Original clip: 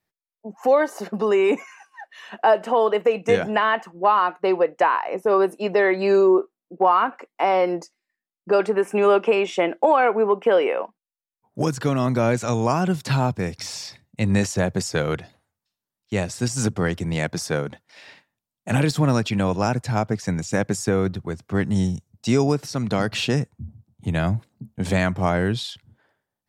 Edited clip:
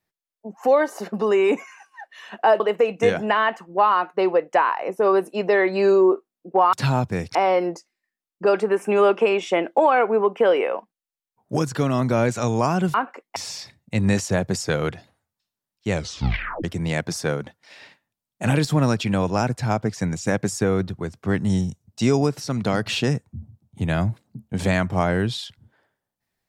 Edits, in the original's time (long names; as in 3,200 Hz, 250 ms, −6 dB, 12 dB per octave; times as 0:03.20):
0:02.60–0:02.86: remove
0:06.99–0:07.41: swap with 0:13.00–0:13.62
0:16.17: tape stop 0.73 s